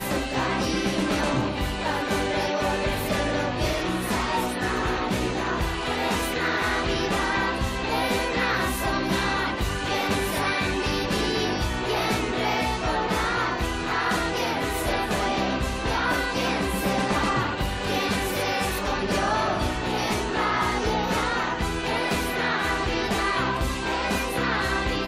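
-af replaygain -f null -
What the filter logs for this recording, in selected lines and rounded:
track_gain = +8.2 dB
track_peak = 0.146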